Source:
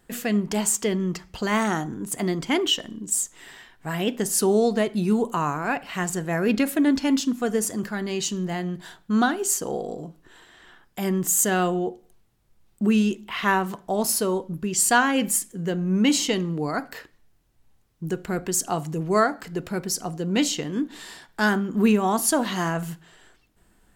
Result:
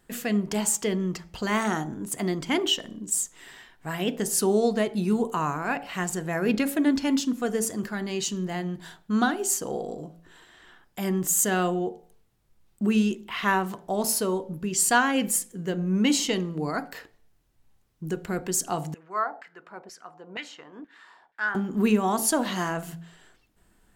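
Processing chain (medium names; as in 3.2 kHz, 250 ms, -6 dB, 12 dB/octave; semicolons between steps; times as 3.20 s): de-hum 56.12 Hz, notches 16; 18.94–21.55 s: LFO band-pass saw down 2.1 Hz 700–2000 Hz; trim -2 dB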